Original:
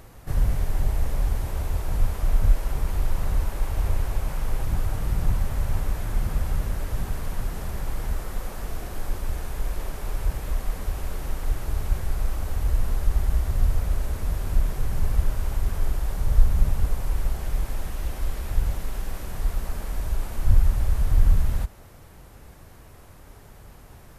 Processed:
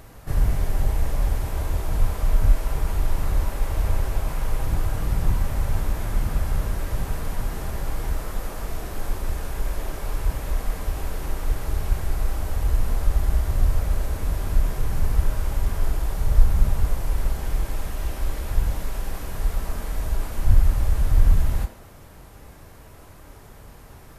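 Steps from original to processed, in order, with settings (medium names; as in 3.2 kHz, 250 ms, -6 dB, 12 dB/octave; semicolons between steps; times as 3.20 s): on a send: high-pass 250 Hz 24 dB/octave + reverberation RT60 0.70 s, pre-delay 5 ms, DRR 4.5 dB; on the sum: trim +1.5 dB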